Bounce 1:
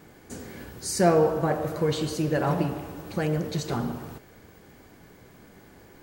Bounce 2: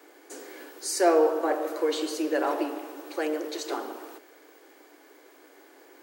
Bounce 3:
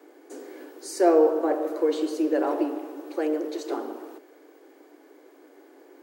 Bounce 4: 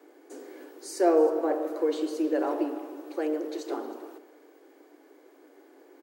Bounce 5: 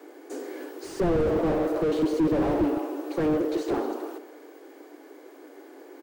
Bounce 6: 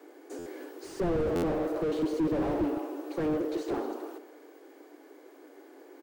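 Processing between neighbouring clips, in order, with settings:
Butterworth high-pass 280 Hz 96 dB per octave
tilt shelving filter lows +7 dB, about 720 Hz
single-tap delay 314 ms −19 dB; level −3 dB
slew-rate limiting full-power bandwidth 14 Hz; level +8 dB
buffer that repeats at 0:00.38/0:01.35, samples 512, times 6; level −5 dB

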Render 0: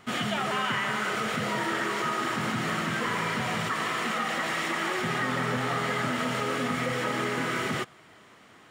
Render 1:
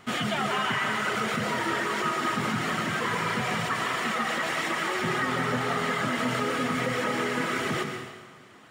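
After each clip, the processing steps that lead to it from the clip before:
reverb reduction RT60 0.63 s
on a send at −4.5 dB: convolution reverb RT60 1.4 s, pre-delay 108 ms
on the sum: level +1.5 dB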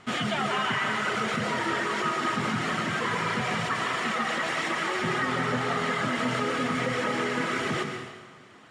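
low-pass filter 8,500 Hz 12 dB per octave

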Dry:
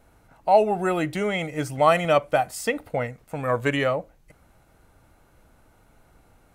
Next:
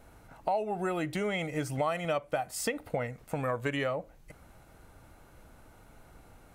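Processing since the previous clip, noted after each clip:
downward compressor 4 to 1, threshold −32 dBFS, peak gain reduction 17 dB
level +2 dB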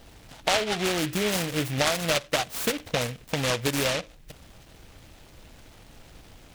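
short delay modulated by noise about 2,300 Hz, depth 0.2 ms
level +5.5 dB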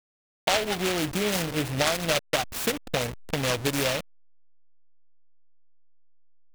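hold until the input has moved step −30.5 dBFS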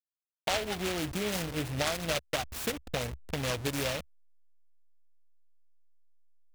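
parametric band 68 Hz +11.5 dB 0.88 octaves
level −6.5 dB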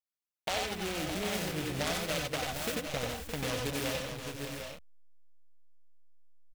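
multi-tap delay 91/95/523/616/752/780 ms −5/−5/−13.5/−8.5/−9/−10.5 dB
level −4 dB

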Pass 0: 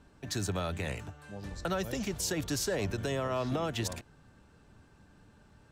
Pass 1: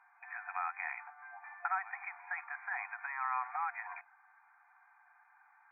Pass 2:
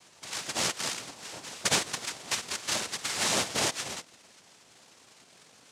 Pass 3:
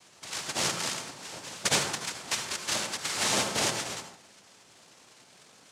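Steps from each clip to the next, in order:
brick-wall band-pass 710–2,500 Hz; level +3.5 dB
cochlear-implant simulation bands 2; level +8 dB
convolution reverb RT60 0.55 s, pre-delay 67 ms, DRR 6 dB

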